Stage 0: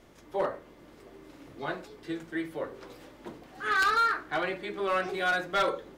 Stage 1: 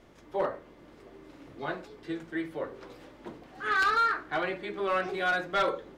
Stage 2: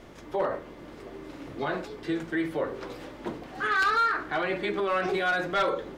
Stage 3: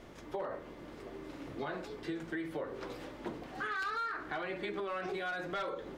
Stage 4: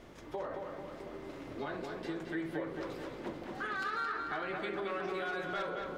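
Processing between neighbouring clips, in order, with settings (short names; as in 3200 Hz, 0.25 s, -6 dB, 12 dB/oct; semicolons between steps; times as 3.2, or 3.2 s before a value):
high shelf 7100 Hz -9.5 dB
limiter -28.5 dBFS, peak gain reduction 7.5 dB; gain +8.5 dB
compressor, threshold -31 dBFS, peak gain reduction 9 dB; gain -4 dB
darkening echo 0.221 s, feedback 58%, low-pass 4300 Hz, level -4 dB; gain -1 dB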